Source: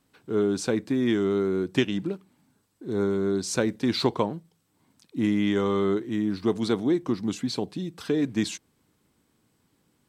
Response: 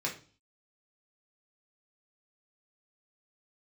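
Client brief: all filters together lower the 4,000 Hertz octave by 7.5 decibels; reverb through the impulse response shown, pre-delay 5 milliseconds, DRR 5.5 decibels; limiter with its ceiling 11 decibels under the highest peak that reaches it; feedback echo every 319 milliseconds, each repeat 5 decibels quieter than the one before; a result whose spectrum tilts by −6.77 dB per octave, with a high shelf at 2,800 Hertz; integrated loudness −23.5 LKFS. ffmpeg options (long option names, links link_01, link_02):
-filter_complex "[0:a]highshelf=frequency=2800:gain=-7,equalizer=frequency=4000:width_type=o:gain=-3.5,alimiter=limit=-20dB:level=0:latency=1,aecho=1:1:319|638|957|1276|1595|1914|2233:0.562|0.315|0.176|0.0988|0.0553|0.031|0.0173,asplit=2[link_01][link_02];[1:a]atrim=start_sample=2205,adelay=5[link_03];[link_02][link_03]afir=irnorm=-1:irlink=0,volume=-10.5dB[link_04];[link_01][link_04]amix=inputs=2:normalize=0,volume=4dB"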